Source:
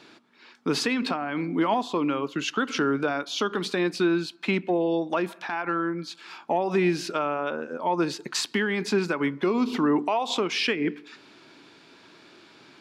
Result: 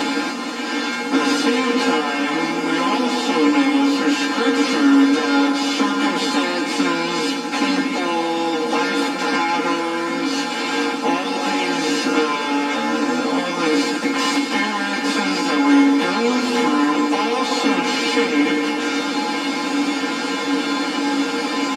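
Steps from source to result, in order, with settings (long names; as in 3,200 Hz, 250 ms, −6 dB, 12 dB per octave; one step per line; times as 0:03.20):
compressor on every frequency bin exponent 0.2
tuned comb filter 94 Hz, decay 0.17 s, harmonics odd, mix 90%
time stretch by phase vocoder 1.7×
comb filter 3.8 ms, depth 98%
level +6 dB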